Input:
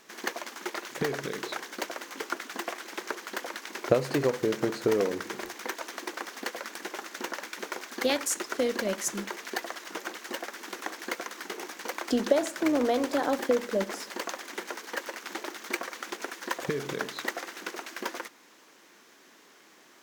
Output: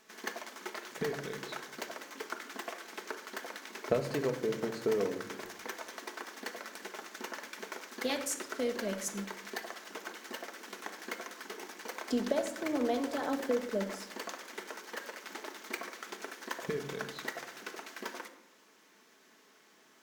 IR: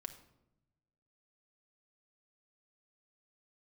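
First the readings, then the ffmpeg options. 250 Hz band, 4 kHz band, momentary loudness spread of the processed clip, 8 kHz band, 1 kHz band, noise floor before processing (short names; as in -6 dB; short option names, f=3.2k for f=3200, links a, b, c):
-5.5 dB, -6.0 dB, 12 LU, -6.5 dB, -6.5 dB, -57 dBFS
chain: -filter_complex "[1:a]atrim=start_sample=2205[a];[0:a][a]afir=irnorm=-1:irlink=0,volume=-2.5dB"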